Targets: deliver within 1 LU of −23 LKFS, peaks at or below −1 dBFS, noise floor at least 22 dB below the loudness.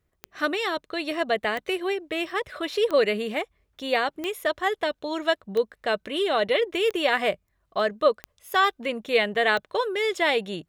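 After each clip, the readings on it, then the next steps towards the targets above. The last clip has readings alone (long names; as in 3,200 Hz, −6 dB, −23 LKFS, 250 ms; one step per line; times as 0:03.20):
number of clicks 8; integrated loudness −25.5 LKFS; sample peak −7.0 dBFS; target loudness −23.0 LKFS
→ click removal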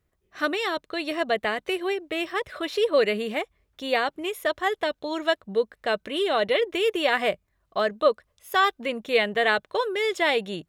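number of clicks 0; integrated loudness −25.5 LKFS; sample peak −7.0 dBFS; target loudness −23.0 LKFS
→ level +2.5 dB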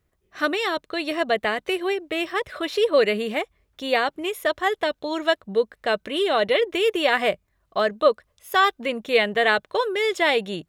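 integrated loudness −23.0 LKFS; sample peak −4.5 dBFS; background noise floor −71 dBFS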